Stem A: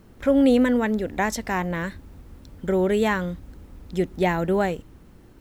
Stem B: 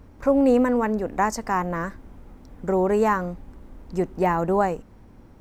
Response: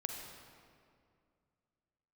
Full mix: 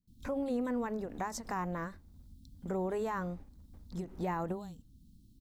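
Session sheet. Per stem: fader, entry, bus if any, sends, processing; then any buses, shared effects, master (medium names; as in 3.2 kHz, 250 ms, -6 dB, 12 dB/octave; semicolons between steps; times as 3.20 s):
-8.5 dB, 0.00 s, no send, gate with hold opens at -42 dBFS; elliptic band-stop 250–3800 Hz
-1.0 dB, 21 ms, polarity flipped, no send, gate -39 dBFS, range -45 dB; peak limiter -15.5 dBFS, peak gain reduction 7 dB; endings held to a fixed fall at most 160 dB/s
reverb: none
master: compression 1.5:1, threshold -51 dBFS, peak gain reduction 11.5 dB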